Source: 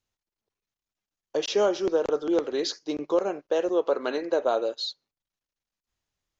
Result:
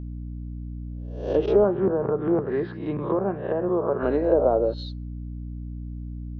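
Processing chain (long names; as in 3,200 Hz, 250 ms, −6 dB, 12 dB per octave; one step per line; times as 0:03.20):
peak hold with a rise ahead of every peak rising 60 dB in 0.52 s
treble cut that deepens with the level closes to 960 Hz, closed at −19.5 dBFS
spectral tilt −4 dB per octave
mains hum 60 Hz, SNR 11 dB
0:01.64–0:04.03: loudspeaker in its box 130–3,300 Hz, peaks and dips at 140 Hz +9 dB, 200 Hz +5 dB, 290 Hz −9 dB, 510 Hz −9 dB, 1,100 Hz +5 dB, 1,700 Hz +8 dB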